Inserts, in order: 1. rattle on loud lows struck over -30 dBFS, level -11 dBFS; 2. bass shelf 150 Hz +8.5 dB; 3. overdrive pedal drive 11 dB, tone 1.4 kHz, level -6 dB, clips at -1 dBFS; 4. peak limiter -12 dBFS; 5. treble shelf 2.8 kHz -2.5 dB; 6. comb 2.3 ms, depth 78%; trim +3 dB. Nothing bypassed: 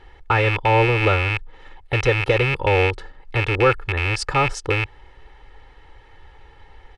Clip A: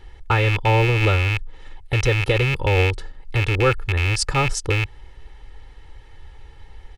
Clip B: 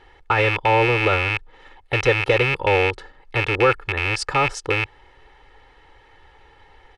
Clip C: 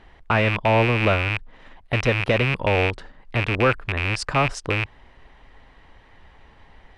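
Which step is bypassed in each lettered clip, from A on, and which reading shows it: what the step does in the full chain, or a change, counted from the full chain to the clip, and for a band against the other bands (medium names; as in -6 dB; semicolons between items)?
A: 3, crest factor change -2.0 dB; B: 2, 125 Hz band -4.5 dB; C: 6, 250 Hz band +3.5 dB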